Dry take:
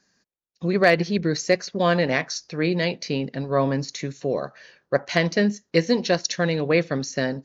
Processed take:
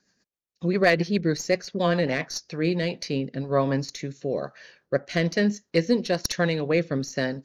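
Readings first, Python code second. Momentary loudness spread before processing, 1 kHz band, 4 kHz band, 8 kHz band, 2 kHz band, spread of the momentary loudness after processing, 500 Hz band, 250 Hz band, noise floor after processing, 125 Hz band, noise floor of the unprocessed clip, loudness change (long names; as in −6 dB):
8 LU, −3.5 dB, −3.0 dB, can't be measured, −3.5 dB, 8 LU, −2.5 dB, −1.5 dB, −80 dBFS, −1.5 dB, −77 dBFS, −2.5 dB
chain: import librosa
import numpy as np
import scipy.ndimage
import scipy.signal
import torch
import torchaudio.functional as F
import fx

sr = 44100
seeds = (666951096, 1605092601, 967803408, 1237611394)

y = fx.tracing_dist(x, sr, depth_ms=0.029)
y = fx.rotary_switch(y, sr, hz=7.5, then_hz=1.1, switch_at_s=2.26)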